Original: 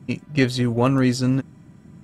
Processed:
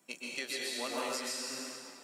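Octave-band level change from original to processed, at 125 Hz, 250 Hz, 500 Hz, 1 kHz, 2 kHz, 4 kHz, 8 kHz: under -40 dB, -25.5 dB, -15.5 dB, -11.5 dB, -9.5 dB, -4.5 dB, -0.5 dB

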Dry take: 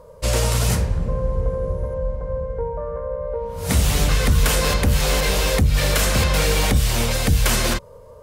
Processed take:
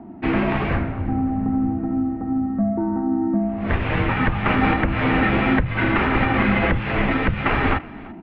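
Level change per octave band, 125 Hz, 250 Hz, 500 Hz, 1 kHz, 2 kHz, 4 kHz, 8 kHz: -3.5 dB, +9.0 dB, -2.5 dB, +5.0 dB, +3.5 dB, -10.5 dB, under -40 dB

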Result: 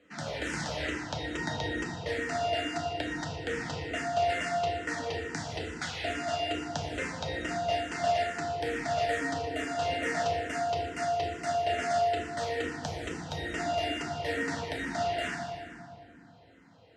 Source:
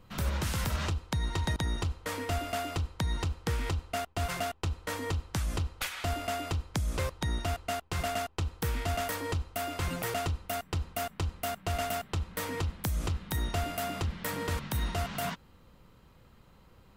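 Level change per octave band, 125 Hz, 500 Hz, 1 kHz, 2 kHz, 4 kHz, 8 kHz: -8.0 dB, +6.5 dB, +5.0 dB, +5.0 dB, +1.5 dB, -2.5 dB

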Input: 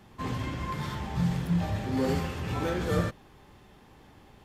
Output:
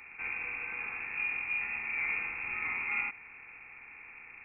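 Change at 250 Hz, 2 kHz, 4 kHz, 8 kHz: -27.0 dB, +9.5 dB, under -15 dB, under -30 dB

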